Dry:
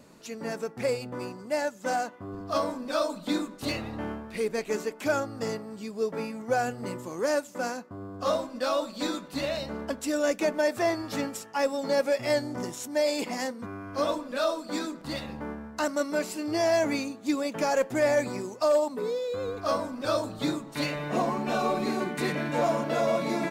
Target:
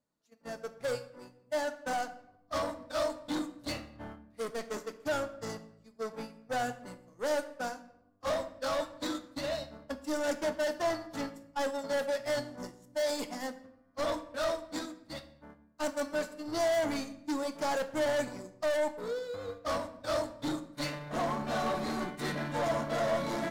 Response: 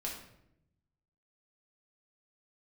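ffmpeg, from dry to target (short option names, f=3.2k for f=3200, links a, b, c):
-filter_complex "[0:a]asoftclip=type=tanh:threshold=-29.5dB,agate=range=-33dB:threshold=-34dB:ratio=16:detection=peak,equalizer=f=200:t=o:w=0.33:g=-5,equalizer=f=400:t=o:w=0.33:g=-8,equalizer=f=2.5k:t=o:w=0.33:g=-7,asplit=2[a][b];[1:a]atrim=start_sample=2205[c];[b][c]afir=irnorm=-1:irlink=0,volume=-6dB[d];[a][d]amix=inputs=2:normalize=0"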